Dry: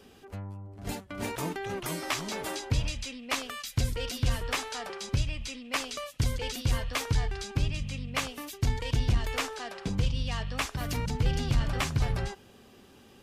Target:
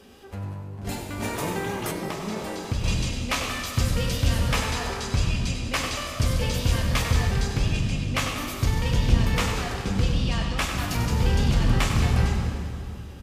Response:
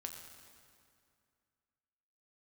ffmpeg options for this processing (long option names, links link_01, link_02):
-filter_complex "[0:a]asplit=8[link_01][link_02][link_03][link_04][link_05][link_06][link_07][link_08];[link_02]adelay=96,afreqshift=49,volume=-9dB[link_09];[link_03]adelay=192,afreqshift=98,volume=-14dB[link_10];[link_04]adelay=288,afreqshift=147,volume=-19.1dB[link_11];[link_05]adelay=384,afreqshift=196,volume=-24.1dB[link_12];[link_06]adelay=480,afreqshift=245,volume=-29.1dB[link_13];[link_07]adelay=576,afreqshift=294,volume=-34.2dB[link_14];[link_08]adelay=672,afreqshift=343,volume=-39.2dB[link_15];[link_01][link_09][link_10][link_11][link_12][link_13][link_14][link_15]amix=inputs=8:normalize=0[link_16];[1:a]atrim=start_sample=2205,asetrate=37485,aresample=44100[link_17];[link_16][link_17]afir=irnorm=-1:irlink=0,asettb=1/sr,asplit=3[link_18][link_19][link_20];[link_18]atrim=end=1.914[link_21];[link_19]atrim=start=1.91:end=2.84,asetpts=PTS-STARTPTS,afade=type=in:duration=0.004:curve=qsin,afade=type=out:start_time=0.926:duration=0.004:curve=qsin,acrossover=split=850|6200[link_22][link_23][link_24];[link_22]acompressor=threshold=-30dB:ratio=4[link_25];[link_23]acompressor=threshold=-47dB:ratio=4[link_26];[link_24]acompressor=threshold=-57dB:ratio=4[link_27];[link_25][link_26][link_27]amix=inputs=3:normalize=0[link_28];[link_20]atrim=start=2.836[link_29];[link_21][link_28]acrossfade=duration=0.004:curve1=hsin:curve2=qsin[link_30];[link_30][link_29]acrossfade=duration=0.004:curve1=qsin:curve2=hsin,volume=7dB"